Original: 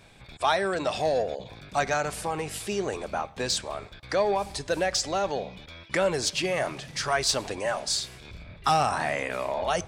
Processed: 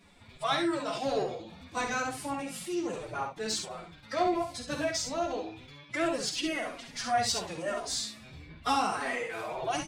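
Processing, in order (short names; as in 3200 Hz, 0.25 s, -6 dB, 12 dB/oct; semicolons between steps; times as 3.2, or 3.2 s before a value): formant-preserving pitch shift +9.5 st; chorus voices 2, 0.31 Hz, delay 10 ms, depth 4.5 ms; early reflections 50 ms -9.5 dB, 68 ms -7 dB; gain -2.5 dB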